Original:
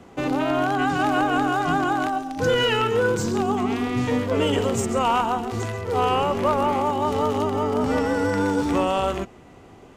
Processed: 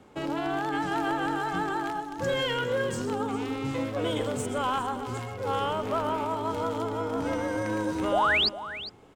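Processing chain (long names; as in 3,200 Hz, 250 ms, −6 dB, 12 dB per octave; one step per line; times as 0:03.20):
wrong playback speed 44.1 kHz file played as 48 kHz
sound drawn into the spectrogram rise, 0:08.12–0:08.49, 520–5,100 Hz −16 dBFS
single-tap delay 405 ms −14 dB
level −7.5 dB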